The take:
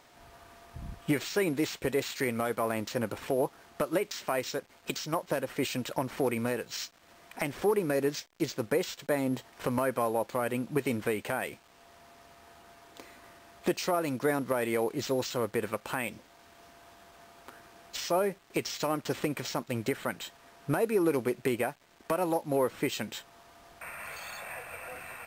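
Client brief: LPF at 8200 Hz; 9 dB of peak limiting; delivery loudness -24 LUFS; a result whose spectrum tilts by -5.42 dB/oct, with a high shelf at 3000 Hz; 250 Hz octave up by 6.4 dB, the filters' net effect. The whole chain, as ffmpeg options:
-af "lowpass=8.2k,equalizer=f=250:t=o:g=8,highshelf=f=3k:g=-6.5,volume=9.5dB,alimiter=limit=-12dB:level=0:latency=1"

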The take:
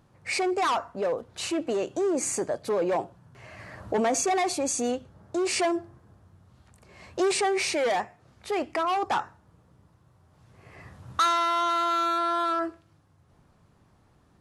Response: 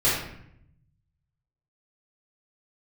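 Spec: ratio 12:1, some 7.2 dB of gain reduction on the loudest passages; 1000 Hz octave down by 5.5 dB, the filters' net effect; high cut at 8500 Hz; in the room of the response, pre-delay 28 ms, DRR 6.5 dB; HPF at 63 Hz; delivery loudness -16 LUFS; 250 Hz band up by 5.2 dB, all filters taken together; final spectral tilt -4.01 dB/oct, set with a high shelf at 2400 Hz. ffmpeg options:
-filter_complex "[0:a]highpass=63,lowpass=8.5k,equalizer=f=250:t=o:g=8.5,equalizer=f=1k:t=o:g=-8,highshelf=f=2.4k:g=-3.5,acompressor=threshold=-25dB:ratio=12,asplit=2[a][b];[1:a]atrim=start_sample=2205,adelay=28[c];[b][c]afir=irnorm=-1:irlink=0,volume=-21.5dB[d];[a][d]amix=inputs=2:normalize=0,volume=13.5dB"

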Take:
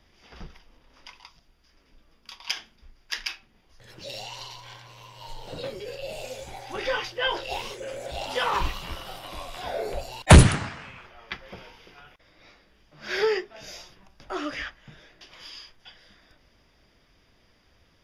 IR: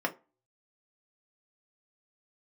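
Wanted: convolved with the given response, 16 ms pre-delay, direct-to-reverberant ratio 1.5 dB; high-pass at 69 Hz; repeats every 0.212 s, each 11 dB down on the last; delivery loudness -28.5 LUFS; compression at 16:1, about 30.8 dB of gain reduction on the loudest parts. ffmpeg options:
-filter_complex "[0:a]highpass=69,acompressor=threshold=-38dB:ratio=16,aecho=1:1:212|424|636:0.282|0.0789|0.0221,asplit=2[a][b];[1:a]atrim=start_sample=2205,adelay=16[c];[b][c]afir=irnorm=-1:irlink=0,volume=-9.5dB[d];[a][d]amix=inputs=2:normalize=0,volume=13dB"

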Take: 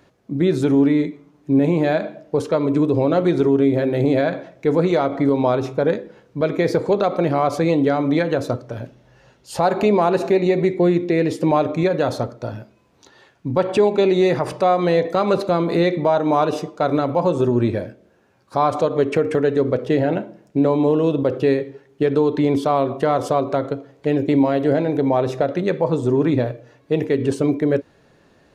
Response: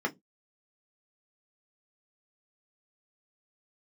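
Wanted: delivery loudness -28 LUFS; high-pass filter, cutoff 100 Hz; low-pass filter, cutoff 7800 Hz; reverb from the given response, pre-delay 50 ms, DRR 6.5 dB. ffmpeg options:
-filter_complex "[0:a]highpass=100,lowpass=7.8k,asplit=2[a][b];[1:a]atrim=start_sample=2205,adelay=50[c];[b][c]afir=irnorm=-1:irlink=0,volume=-14.5dB[d];[a][d]amix=inputs=2:normalize=0,volume=-10dB"

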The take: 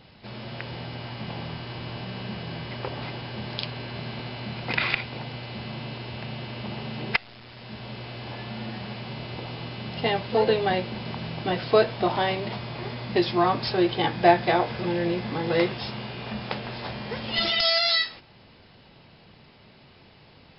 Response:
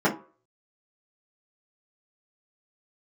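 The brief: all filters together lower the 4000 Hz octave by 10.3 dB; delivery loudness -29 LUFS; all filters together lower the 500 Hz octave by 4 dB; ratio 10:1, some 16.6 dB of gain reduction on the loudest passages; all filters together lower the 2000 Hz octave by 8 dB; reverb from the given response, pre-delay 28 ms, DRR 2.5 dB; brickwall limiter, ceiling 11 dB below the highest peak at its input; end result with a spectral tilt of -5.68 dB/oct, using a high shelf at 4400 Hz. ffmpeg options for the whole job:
-filter_complex "[0:a]equalizer=f=500:t=o:g=-5,equalizer=f=2k:t=o:g=-6,equalizer=f=4k:t=o:g=-6.5,highshelf=f=4.4k:g=-8.5,acompressor=threshold=-32dB:ratio=10,alimiter=level_in=4dB:limit=-24dB:level=0:latency=1,volume=-4dB,asplit=2[a][b];[1:a]atrim=start_sample=2205,adelay=28[c];[b][c]afir=irnorm=-1:irlink=0,volume=-18.5dB[d];[a][d]amix=inputs=2:normalize=0,volume=6.5dB"

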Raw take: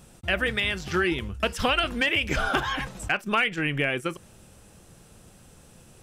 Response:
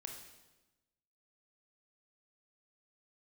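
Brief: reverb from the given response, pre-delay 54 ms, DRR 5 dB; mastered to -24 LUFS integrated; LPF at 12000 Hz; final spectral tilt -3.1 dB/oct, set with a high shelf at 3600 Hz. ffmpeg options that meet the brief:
-filter_complex "[0:a]lowpass=12k,highshelf=f=3.6k:g=8.5,asplit=2[a][b];[1:a]atrim=start_sample=2205,adelay=54[c];[b][c]afir=irnorm=-1:irlink=0,volume=-1.5dB[d];[a][d]amix=inputs=2:normalize=0,volume=-1.5dB"

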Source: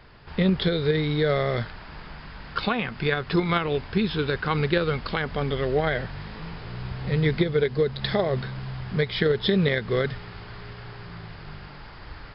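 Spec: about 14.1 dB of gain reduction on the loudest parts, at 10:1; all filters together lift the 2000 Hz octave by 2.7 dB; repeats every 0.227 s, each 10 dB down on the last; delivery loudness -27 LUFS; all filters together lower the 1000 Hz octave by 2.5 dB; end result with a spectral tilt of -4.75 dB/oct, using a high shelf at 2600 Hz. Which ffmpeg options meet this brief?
-af "equalizer=f=1k:t=o:g=-5,equalizer=f=2k:t=o:g=7,highshelf=f=2.6k:g=-5.5,acompressor=threshold=-32dB:ratio=10,aecho=1:1:227|454|681|908:0.316|0.101|0.0324|0.0104,volume=9.5dB"

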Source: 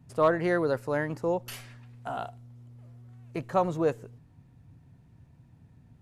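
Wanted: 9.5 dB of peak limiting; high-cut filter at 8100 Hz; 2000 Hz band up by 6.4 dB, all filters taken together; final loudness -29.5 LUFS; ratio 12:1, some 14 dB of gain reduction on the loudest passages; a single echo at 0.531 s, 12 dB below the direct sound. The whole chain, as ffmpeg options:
-af "lowpass=8.1k,equalizer=f=2k:t=o:g=8,acompressor=threshold=-32dB:ratio=12,alimiter=level_in=6dB:limit=-24dB:level=0:latency=1,volume=-6dB,aecho=1:1:531:0.251,volume=13dB"

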